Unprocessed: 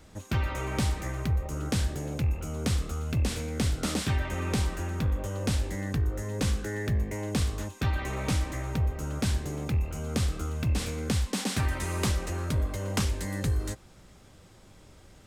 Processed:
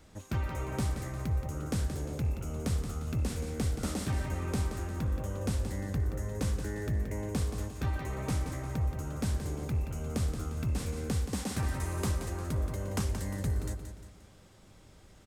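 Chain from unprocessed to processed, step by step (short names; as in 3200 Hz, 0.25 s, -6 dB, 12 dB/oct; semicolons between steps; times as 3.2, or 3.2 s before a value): dynamic EQ 3200 Hz, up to -7 dB, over -50 dBFS, Q 0.74; on a send: feedback echo 0.176 s, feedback 42%, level -8.5 dB; on the sum: gain -4 dB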